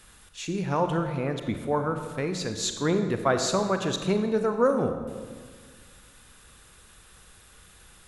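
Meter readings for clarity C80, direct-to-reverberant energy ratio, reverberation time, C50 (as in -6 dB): 9.0 dB, 6.5 dB, 1.6 s, 7.5 dB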